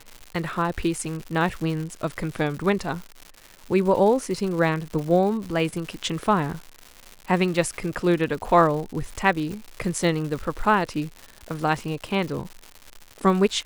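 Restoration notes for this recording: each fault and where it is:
surface crackle 220 per second −31 dBFS

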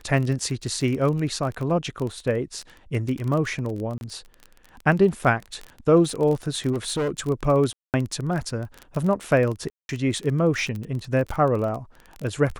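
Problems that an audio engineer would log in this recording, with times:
surface crackle 26 per second −27 dBFS
0:03.98–0:04.01: drop-out 31 ms
0:06.72–0:07.20: clipping −21 dBFS
0:07.73–0:07.94: drop-out 208 ms
0:09.70–0:09.89: drop-out 191 ms

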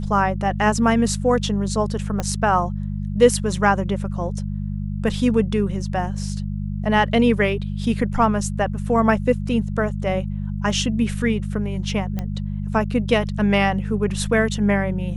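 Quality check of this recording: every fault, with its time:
mains hum 50 Hz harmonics 4 −26 dBFS
0:02.20: click −10 dBFS
0:12.19: click −14 dBFS

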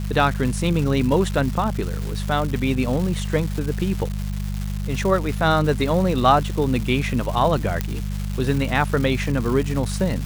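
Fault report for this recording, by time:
surface crackle 520 per second −27 dBFS
mains hum 50 Hz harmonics 4 −26 dBFS
0:07.81: click −8 dBFS

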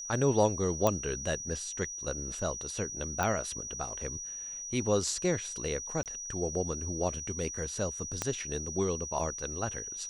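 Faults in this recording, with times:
whistle 5,800 Hz −38 dBFS
0:00.87: click −13 dBFS
0:03.23: click
0:06.03–0:06.06: drop-out 28 ms
0:08.22: click −15 dBFS

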